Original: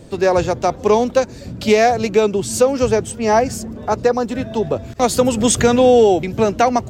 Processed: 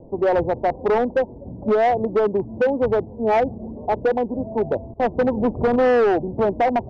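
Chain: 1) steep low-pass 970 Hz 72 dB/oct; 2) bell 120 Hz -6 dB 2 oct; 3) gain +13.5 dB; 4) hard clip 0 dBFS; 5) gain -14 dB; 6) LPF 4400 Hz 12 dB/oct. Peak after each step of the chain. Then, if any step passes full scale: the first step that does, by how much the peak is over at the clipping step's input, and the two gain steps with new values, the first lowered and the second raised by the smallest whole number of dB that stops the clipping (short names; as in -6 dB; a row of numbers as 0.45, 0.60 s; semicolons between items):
-3.0, -4.0, +9.5, 0.0, -14.0, -13.5 dBFS; step 3, 9.5 dB; step 3 +3.5 dB, step 5 -4 dB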